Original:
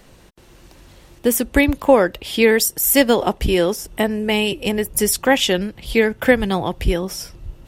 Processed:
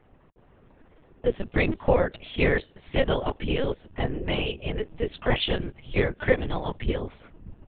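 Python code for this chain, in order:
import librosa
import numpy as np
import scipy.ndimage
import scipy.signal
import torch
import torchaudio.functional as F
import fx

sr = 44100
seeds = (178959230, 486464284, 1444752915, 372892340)

y = fx.whisperise(x, sr, seeds[0])
y = fx.env_lowpass(y, sr, base_hz=1500.0, full_db=-12.0)
y = fx.lpc_vocoder(y, sr, seeds[1], excitation='pitch_kept', order=10)
y = y * 10.0 ** (-8.0 / 20.0)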